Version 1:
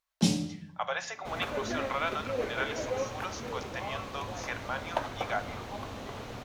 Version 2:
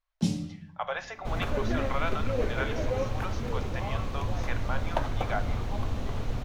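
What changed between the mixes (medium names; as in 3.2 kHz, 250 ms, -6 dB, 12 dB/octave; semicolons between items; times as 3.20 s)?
speech: add distance through air 130 m; first sound -8.0 dB; master: remove high-pass 380 Hz 6 dB/octave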